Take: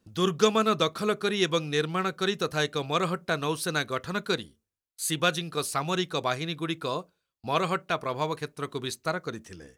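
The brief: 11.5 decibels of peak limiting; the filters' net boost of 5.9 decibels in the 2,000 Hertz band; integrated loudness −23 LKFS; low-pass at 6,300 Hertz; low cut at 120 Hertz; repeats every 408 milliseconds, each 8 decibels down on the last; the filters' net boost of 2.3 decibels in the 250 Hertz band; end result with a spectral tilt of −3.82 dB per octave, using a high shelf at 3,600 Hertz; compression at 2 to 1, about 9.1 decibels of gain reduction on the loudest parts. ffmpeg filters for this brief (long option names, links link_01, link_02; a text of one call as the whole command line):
ffmpeg -i in.wav -af "highpass=120,lowpass=6300,equalizer=frequency=250:width_type=o:gain=4,equalizer=frequency=2000:width_type=o:gain=7,highshelf=frequency=3600:gain=4.5,acompressor=threshold=-31dB:ratio=2,alimiter=level_in=1dB:limit=-24dB:level=0:latency=1,volume=-1dB,aecho=1:1:408|816|1224|1632|2040:0.398|0.159|0.0637|0.0255|0.0102,volume=13.5dB" out.wav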